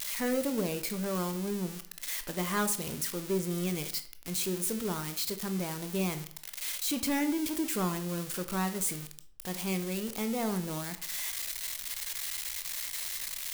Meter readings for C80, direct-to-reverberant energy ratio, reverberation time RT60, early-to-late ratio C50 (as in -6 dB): 16.0 dB, 8.5 dB, 0.55 s, 12.5 dB